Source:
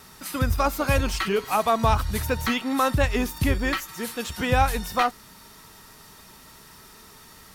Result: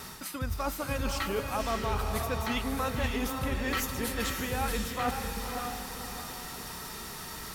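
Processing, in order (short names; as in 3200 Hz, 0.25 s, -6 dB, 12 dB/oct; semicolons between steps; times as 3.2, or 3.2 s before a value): reverse; compressor 6:1, threshold -36 dBFS, peak gain reduction 19.5 dB; reverse; diffused feedback echo 0.556 s, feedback 42%, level -3.5 dB; gain +5.5 dB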